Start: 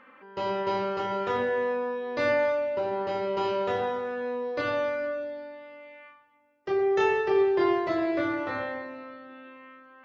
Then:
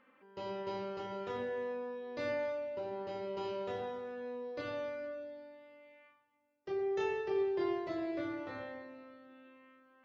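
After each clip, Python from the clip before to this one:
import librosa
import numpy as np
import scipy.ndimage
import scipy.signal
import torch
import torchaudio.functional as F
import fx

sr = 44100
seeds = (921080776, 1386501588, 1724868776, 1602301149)

y = fx.peak_eq(x, sr, hz=1300.0, db=-6.0, octaves=1.9)
y = y * librosa.db_to_amplitude(-9.0)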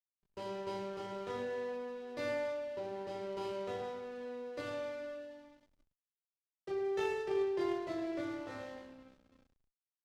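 y = fx.backlash(x, sr, play_db=-46.0)
y = fx.peak_eq(y, sr, hz=5500.0, db=4.5, octaves=1.9)
y = fx.cheby_harmonics(y, sr, harmonics=(3, 5), levels_db=(-18, -29), full_scale_db=-24.0)
y = y * librosa.db_to_amplitude(1.5)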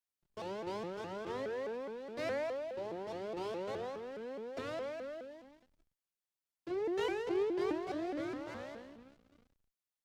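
y = fx.vibrato_shape(x, sr, shape='saw_up', rate_hz=4.8, depth_cents=250.0)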